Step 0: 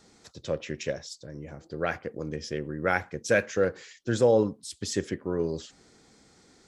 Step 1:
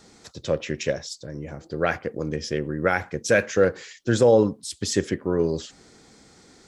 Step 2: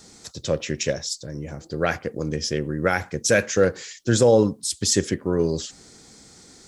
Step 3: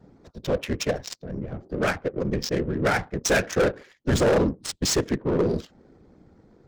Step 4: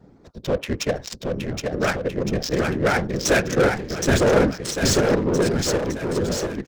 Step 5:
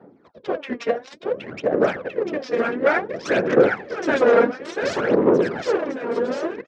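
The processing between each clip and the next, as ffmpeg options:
-af "alimiter=level_in=4.47:limit=0.891:release=50:level=0:latency=1,volume=0.447"
-af "bass=f=250:g=3,treble=f=4000:g=9"
-af "afftfilt=real='hypot(re,im)*cos(2*PI*random(0))':imag='hypot(re,im)*sin(2*PI*random(1))':win_size=512:overlap=0.75,volume=13.3,asoftclip=hard,volume=0.075,adynamicsmooth=sensitivity=8:basefreq=760,volume=2.11"
-af "aecho=1:1:770|1463|2087|2648|3153:0.631|0.398|0.251|0.158|0.1,volume=1.26"
-af "aphaser=in_gain=1:out_gain=1:delay=4.3:decay=0.68:speed=0.57:type=sinusoidal,highpass=340,lowpass=2200"

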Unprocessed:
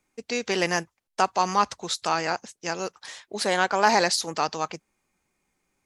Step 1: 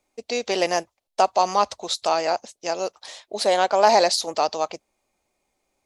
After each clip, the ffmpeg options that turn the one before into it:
-af "equalizer=f=160:t=o:w=0.67:g=-9,equalizer=f=630:t=o:w=0.67:g=10,equalizer=f=1600:t=o:w=0.67:g=-6,equalizer=f=4000:t=o:w=0.67:g=4"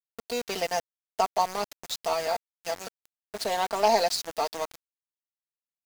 -af "aeval=exprs='0.596*(cos(1*acos(clip(val(0)/0.596,-1,1)))-cos(1*PI/2))+0.0211*(cos(2*acos(clip(val(0)/0.596,-1,1)))-cos(2*PI/2))+0.0668*(cos(3*acos(clip(val(0)/0.596,-1,1)))-cos(3*PI/2))+0.0168*(cos(5*acos(clip(val(0)/0.596,-1,1)))-cos(5*PI/2))':c=same,aecho=1:1:4.4:0.67,aeval=exprs='val(0)*gte(abs(val(0)),0.0501)':c=same,volume=0.501"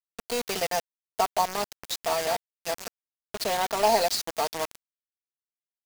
-af "acrusher=bits=4:mix=0:aa=0.000001"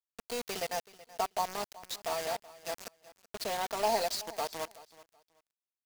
-af "aecho=1:1:377|754:0.112|0.0247,volume=0.422"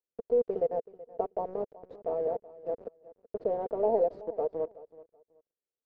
-af "lowpass=f=480:t=q:w=4.4,volume=1.12"

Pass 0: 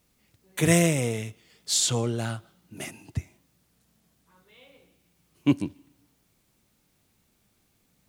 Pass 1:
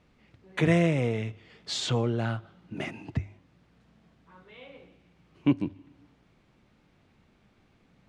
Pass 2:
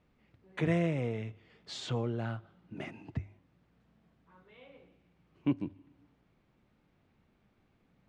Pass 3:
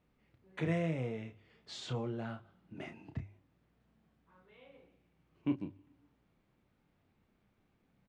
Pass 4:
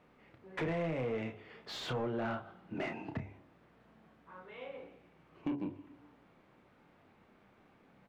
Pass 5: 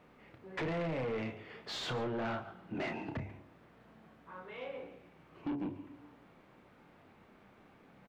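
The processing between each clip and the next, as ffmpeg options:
-af "lowpass=2600,bandreject=f=50:t=h:w=6,bandreject=f=100:t=h:w=6,acompressor=threshold=0.00708:ratio=1.5,volume=2.37"
-af "highshelf=f=3400:g=-7,volume=0.473"
-filter_complex "[0:a]asplit=2[s0][s1];[s1]adelay=31,volume=0.422[s2];[s0][s2]amix=inputs=2:normalize=0,volume=0.596"
-filter_complex "[0:a]acompressor=threshold=0.0112:ratio=5,bandreject=f=70.7:t=h:w=4,bandreject=f=141.4:t=h:w=4,bandreject=f=212.1:t=h:w=4,bandreject=f=282.8:t=h:w=4,bandreject=f=353.5:t=h:w=4,bandreject=f=424.2:t=h:w=4,bandreject=f=494.9:t=h:w=4,bandreject=f=565.6:t=h:w=4,bandreject=f=636.3:t=h:w=4,bandreject=f=707:t=h:w=4,bandreject=f=777.7:t=h:w=4,bandreject=f=848.4:t=h:w=4,bandreject=f=919.1:t=h:w=4,bandreject=f=989.8:t=h:w=4,asplit=2[s0][s1];[s1]highpass=f=720:p=1,volume=8.91,asoftclip=type=tanh:threshold=0.0299[s2];[s0][s2]amix=inputs=2:normalize=0,lowpass=f=1100:p=1,volume=0.501,volume=1.88"
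-af "asoftclip=type=tanh:threshold=0.0168,aecho=1:1:142:0.126,volume=1.5"

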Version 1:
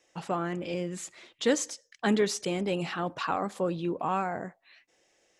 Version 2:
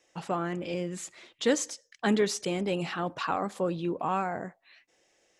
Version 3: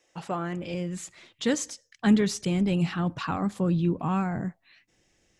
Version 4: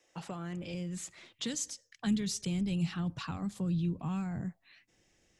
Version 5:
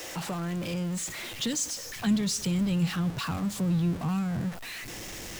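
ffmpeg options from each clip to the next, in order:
-af anull
-af "asubboost=boost=9.5:cutoff=180"
-filter_complex "[0:a]acrossover=split=180|3000[s0][s1][s2];[s1]acompressor=threshold=0.01:ratio=5[s3];[s0][s3][s2]amix=inputs=3:normalize=0,volume=0.75"
-af "aeval=exprs='val(0)+0.5*0.0126*sgn(val(0))':c=same,volume=1.58"

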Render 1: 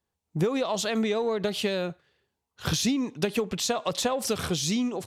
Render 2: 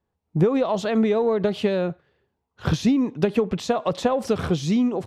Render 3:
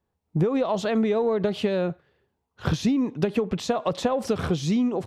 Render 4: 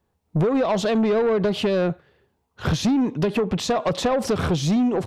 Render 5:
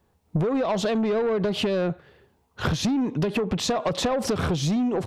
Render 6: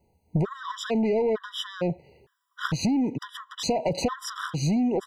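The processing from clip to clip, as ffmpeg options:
-af "lowpass=f=1000:p=1,volume=2.24"
-af "acompressor=threshold=0.0891:ratio=2"
-af "asoftclip=type=tanh:threshold=0.0794,volume=2.11"
-af "acompressor=threshold=0.0398:ratio=6,volume=1.88"
-af "afftfilt=real='re*gt(sin(2*PI*1.1*pts/sr)*(1-2*mod(floor(b*sr/1024/980),2)),0)':imag='im*gt(sin(2*PI*1.1*pts/sr)*(1-2*mod(floor(b*sr/1024/980),2)),0)':win_size=1024:overlap=0.75"

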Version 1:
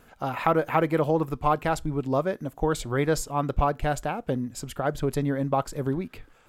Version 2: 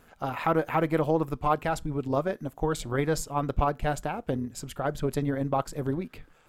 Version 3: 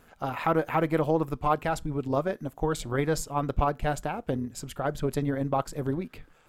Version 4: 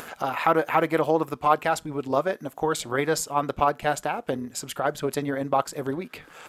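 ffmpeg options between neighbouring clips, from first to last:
-af "tremolo=f=160:d=0.462"
-af anull
-af "highpass=f=510:p=1,acompressor=mode=upward:threshold=0.0178:ratio=2.5,aresample=32000,aresample=44100,volume=2.11"

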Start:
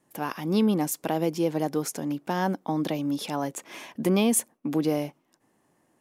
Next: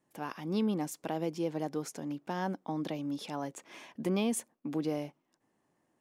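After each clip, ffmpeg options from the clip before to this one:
-af "equalizer=f=13000:t=o:w=0.75:g=-9,volume=0.398"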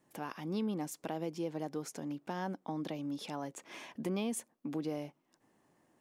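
-af "acompressor=threshold=0.00178:ratio=1.5,volume=1.78"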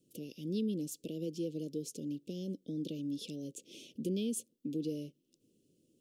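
-af "asuperstop=centerf=1200:order=12:qfactor=0.52,volume=1.12"

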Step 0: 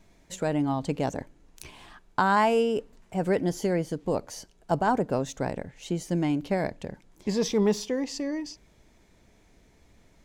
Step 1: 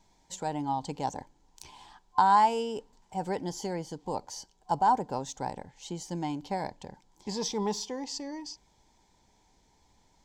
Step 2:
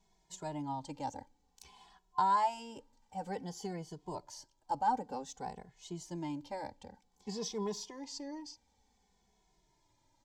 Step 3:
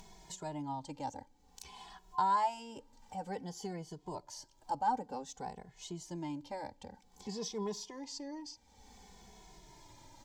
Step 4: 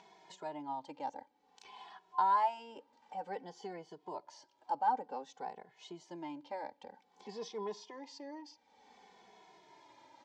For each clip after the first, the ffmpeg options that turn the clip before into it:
-af "superequalizer=9b=3.98:13b=2:14b=2.82:15b=2.51,volume=0.376"
-filter_complex "[0:a]asplit=2[s0][s1];[s1]adelay=2.3,afreqshift=-0.54[s2];[s0][s2]amix=inputs=2:normalize=1,volume=0.596"
-af "acompressor=mode=upward:threshold=0.01:ratio=2.5,volume=0.891"
-af "highpass=370,lowpass=3100,volume=1.12"

